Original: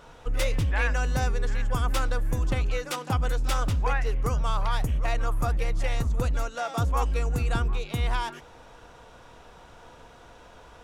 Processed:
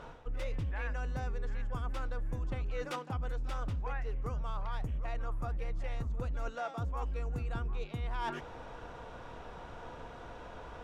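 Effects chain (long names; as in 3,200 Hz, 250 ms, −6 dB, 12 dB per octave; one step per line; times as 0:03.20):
low-pass filter 2,000 Hz 6 dB per octave
reversed playback
downward compressor 8 to 1, threshold −37 dBFS, peak gain reduction 16 dB
reversed playback
level +3.5 dB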